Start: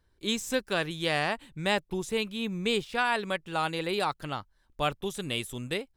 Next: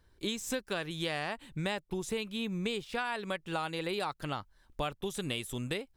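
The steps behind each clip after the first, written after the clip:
downward compressor 5 to 1, threshold −36 dBFS, peak gain reduction 13.5 dB
level +4 dB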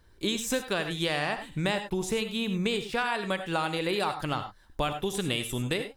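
reverb whose tail is shaped and stops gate 120 ms rising, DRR 8 dB
level +5.5 dB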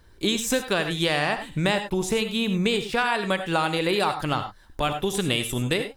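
saturating transformer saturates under 230 Hz
level +5.5 dB

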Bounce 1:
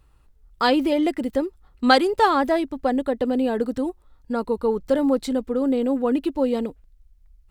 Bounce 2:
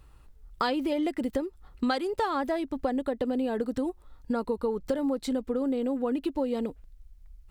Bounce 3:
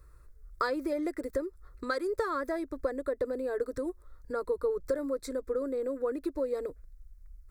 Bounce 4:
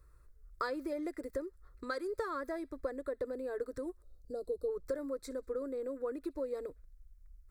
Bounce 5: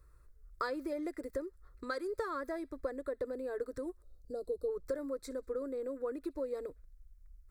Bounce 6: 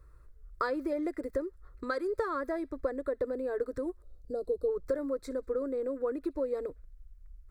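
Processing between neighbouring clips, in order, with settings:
downward compressor 6 to 1, threshold −29 dBFS, peak gain reduction 17.5 dB; level +3 dB
phaser with its sweep stopped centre 810 Hz, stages 6
gain on a spectral selection 0:04.02–0:04.68, 860–3,600 Hz −20 dB; delay with a high-pass on its return 64 ms, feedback 48%, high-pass 2,300 Hz, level −23.5 dB; level −6 dB
no processing that can be heard
high-shelf EQ 3,300 Hz −8.5 dB; level +5.5 dB

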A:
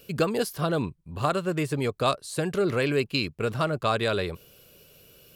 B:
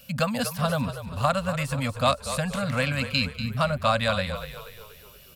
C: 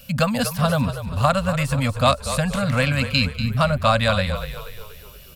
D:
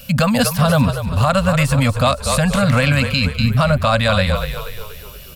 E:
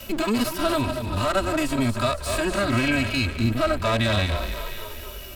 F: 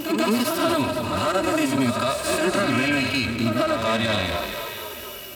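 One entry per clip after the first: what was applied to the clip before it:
elliptic band-stop filter 260–530 Hz; time-frequency box erased 0:03.26–0:03.57, 350–11,000 Hz; echo with shifted repeats 240 ms, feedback 48%, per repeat −36 Hz, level −11 dB; level +3 dB
low-shelf EQ 79 Hz +10 dB; level +4.5 dB
brickwall limiter −12 dBFS, peak gain reduction 8.5 dB; level +7 dB
lower of the sound and its delayed copy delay 3.1 ms; harmonic and percussive parts rebalanced percussive −17 dB; multiband upward and downward compressor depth 40%; level −2 dB
high-pass filter 150 Hz 12 dB per octave; brickwall limiter −16 dBFS, peak gain reduction 6.5 dB; on a send: backwards echo 138 ms −6.5 dB; on the sum: level +3 dB

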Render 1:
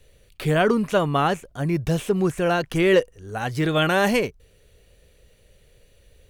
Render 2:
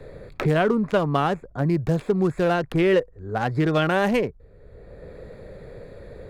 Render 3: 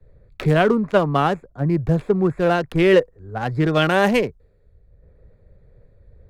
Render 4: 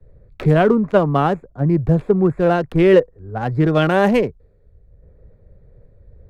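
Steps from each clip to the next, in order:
adaptive Wiener filter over 15 samples; high-shelf EQ 4,200 Hz −7 dB; multiband upward and downward compressor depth 70%
multiband upward and downward expander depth 100%; level +3 dB
tilt shelving filter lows +4.5 dB, about 1,500 Hz; level −1 dB

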